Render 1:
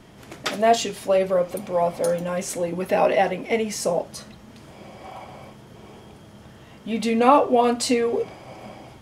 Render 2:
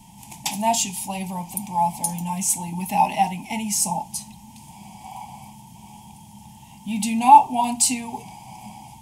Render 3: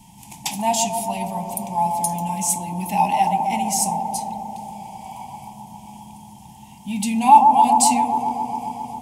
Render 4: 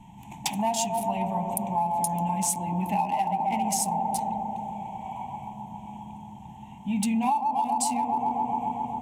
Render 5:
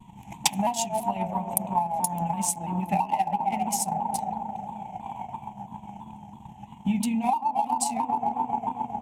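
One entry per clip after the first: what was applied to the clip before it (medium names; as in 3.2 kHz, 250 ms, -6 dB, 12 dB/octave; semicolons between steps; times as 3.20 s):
FFT filter 110 Hz 0 dB, 200 Hz +5 dB, 520 Hz -28 dB, 890 Hz +14 dB, 1.3 kHz -28 dB, 2.5 kHz +2 dB, 4.1 kHz -1 dB, 8.1 kHz +13 dB; trim -1 dB
feedback echo behind a band-pass 134 ms, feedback 80%, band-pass 500 Hz, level -3 dB
local Wiener filter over 9 samples; compression 16:1, threshold -22 dBFS, peak gain reduction 17.5 dB
transient shaper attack +9 dB, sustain -6 dB; vibrato with a chosen wave saw down 3 Hz, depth 100 cents; trim -2 dB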